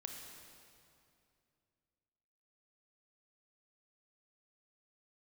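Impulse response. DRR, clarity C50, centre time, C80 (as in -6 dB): 2.0 dB, 3.0 dB, 79 ms, 4.0 dB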